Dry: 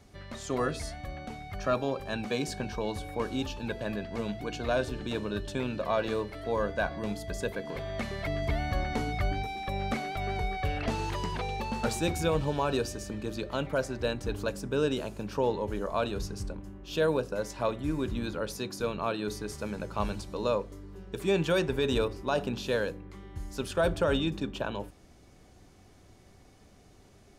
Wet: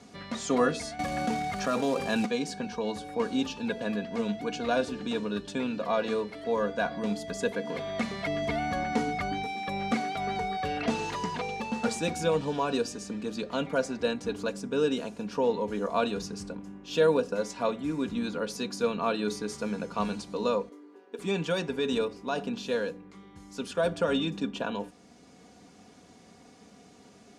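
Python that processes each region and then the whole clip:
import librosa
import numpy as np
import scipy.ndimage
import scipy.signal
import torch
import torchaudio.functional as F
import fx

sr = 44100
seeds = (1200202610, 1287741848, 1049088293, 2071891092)

y = fx.chain(x, sr, fx.quant_float(bits=2),
    fx.env_flatten(amount_pct=70), at=(0.99, 2.26))
y = fx.chain(y, sr, fx.brickwall_highpass(low_hz=230.0),
    fx.peak_eq(hz=6700.0, db=-10.0, octaves=2.1), at=(20.69, 21.19))
y = scipy.signal.sosfilt(scipy.signal.cheby1(2, 1.0, [160.0, 7900.0], 'bandpass', fs=sr, output='sos'), y)
y = y + 0.56 * np.pad(y, (int(4.2 * sr / 1000.0), 0))[:len(y)]
y = fx.rider(y, sr, range_db=10, speed_s=2.0)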